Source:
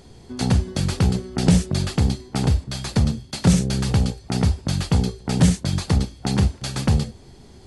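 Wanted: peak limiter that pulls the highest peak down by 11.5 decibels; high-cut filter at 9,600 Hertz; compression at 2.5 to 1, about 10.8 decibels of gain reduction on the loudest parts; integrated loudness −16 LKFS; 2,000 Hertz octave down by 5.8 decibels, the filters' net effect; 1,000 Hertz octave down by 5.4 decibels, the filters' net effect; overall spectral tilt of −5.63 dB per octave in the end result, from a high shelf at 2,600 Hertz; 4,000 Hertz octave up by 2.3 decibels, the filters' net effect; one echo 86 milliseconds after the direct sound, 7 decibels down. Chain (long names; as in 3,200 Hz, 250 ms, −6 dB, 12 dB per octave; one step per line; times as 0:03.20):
low-pass filter 9,600 Hz
parametric band 1,000 Hz −6 dB
parametric band 2,000 Hz −6.5 dB
high-shelf EQ 2,600 Hz −3.5 dB
parametric band 4,000 Hz +7.5 dB
downward compressor 2.5 to 1, threshold −27 dBFS
brickwall limiter −24.5 dBFS
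single-tap delay 86 ms −7 dB
level +17.5 dB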